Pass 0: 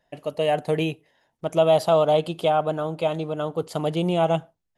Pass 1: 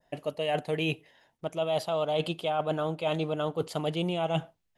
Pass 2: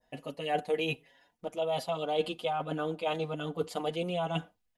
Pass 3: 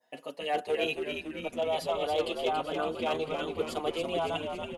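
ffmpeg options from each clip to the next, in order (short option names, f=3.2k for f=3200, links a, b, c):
-af "adynamicequalizer=threshold=0.00891:dfrequency=2800:dqfactor=0.95:tfrequency=2800:tqfactor=0.95:attack=5:release=100:ratio=0.375:range=3:mode=boostabove:tftype=bell,areverse,acompressor=threshold=-27dB:ratio=10,areverse,volume=1.5dB"
-filter_complex "[0:a]aecho=1:1:4.1:0.41,asplit=2[a][b];[b]adelay=6.1,afreqshift=1.3[c];[a][c]amix=inputs=2:normalize=1"
-filter_complex "[0:a]highpass=340,volume=24dB,asoftclip=hard,volume=-24dB,asplit=9[a][b][c][d][e][f][g][h][i];[b]adelay=280,afreqshift=-74,volume=-5.5dB[j];[c]adelay=560,afreqshift=-148,volume=-10.1dB[k];[d]adelay=840,afreqshift=-222,volume=-14.7dB[l];[e]adelay=1120,afreqshift=-296,volume=-19.2dB[m];[f]adelay=1400,afreqshift=-370,volume=-23.8dB[n];[g]adelay=1680,afreqshift=-444,volume=-28.4dB[o];[h]adelay=1960,afreqshift=-518,volume=-33dB[p];[i]adelay=2240,afreqshift=-592,volume=-37.6dB[q];[a][j][k][l][m][n][o][p][q]amix=inputs=9:normalize=0,volume=1.5dB"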